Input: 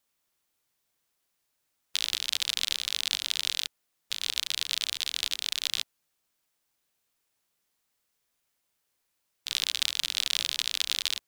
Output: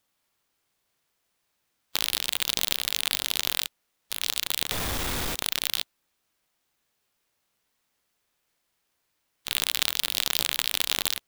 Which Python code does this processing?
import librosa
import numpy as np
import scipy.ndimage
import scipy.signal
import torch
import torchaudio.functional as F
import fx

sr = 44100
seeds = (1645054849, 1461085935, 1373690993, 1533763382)

y = fx.clip_1bit(x, sr, at=(4.71, 5.35))
y = fx.hpss(y, sr, part='harmonic', gain_db=6)
y = fx.clock_jitter(y, sr, seeds[0], jitter_ms=0.035)